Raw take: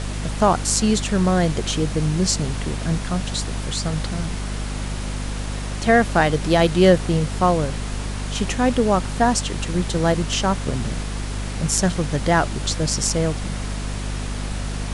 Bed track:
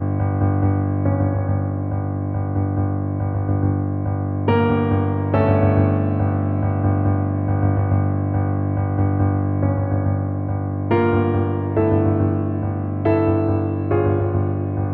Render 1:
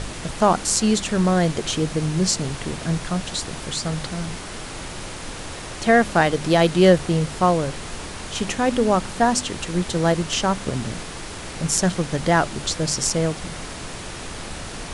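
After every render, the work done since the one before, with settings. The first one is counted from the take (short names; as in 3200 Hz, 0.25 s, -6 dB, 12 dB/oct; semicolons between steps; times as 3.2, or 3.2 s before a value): de-hum 50 Hz, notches 5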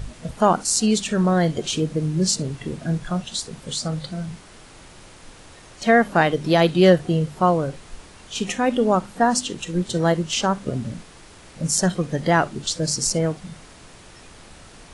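noise print and reduce 12 dB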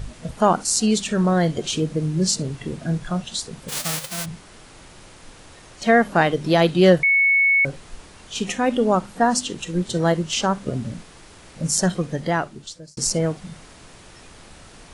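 3.68–4.24 spectral whitening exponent 0.1; 7.03–7.65 bleep 2210 Hz -13.5 dBFS; 11.95–12.97 fade out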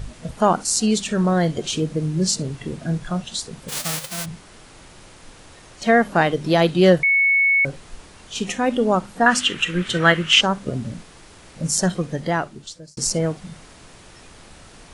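9.26–10.41 band shelf 2000 Hz +14.5 dB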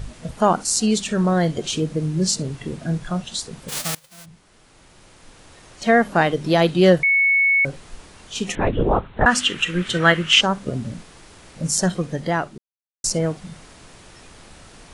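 3.95–5.88 fade in, from -23.5 dB; 8.55–9.26 LPC vocoder at 8 kHz whisper; 12.58–13.04 mute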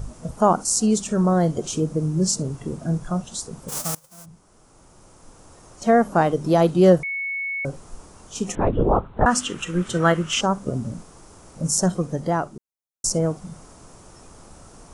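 band shelf 2700 Hz -11 dB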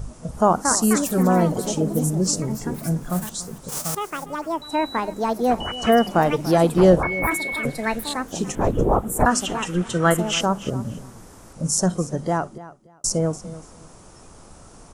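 echoes that change speed 0.336 s, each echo +5 st, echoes 2, each echo -6 dB; feedback echo 0.289 s, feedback 21%, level -17 dB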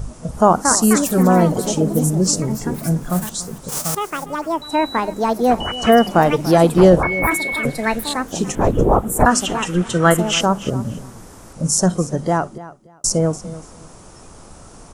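gain +4.5 dB; limiter -1 dBFS, peak gain reduction 2.5 dB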